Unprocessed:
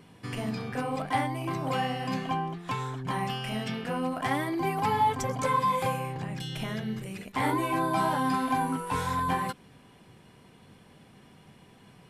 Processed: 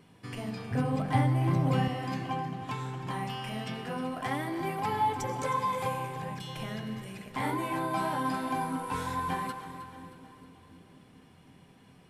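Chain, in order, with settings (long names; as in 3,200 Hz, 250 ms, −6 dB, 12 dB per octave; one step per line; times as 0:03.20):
0:00.71–0:01.88: parametric band 120 Hz +15 dB 2.5 octaves
echo with a time of its own for lows and highs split 410 Hz, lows 739 ms, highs 313 ms, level −13 dB
convolution reverb RT60 2.5 s, pre-delay 62 ms, DRR 10 dB
level −4.5 dB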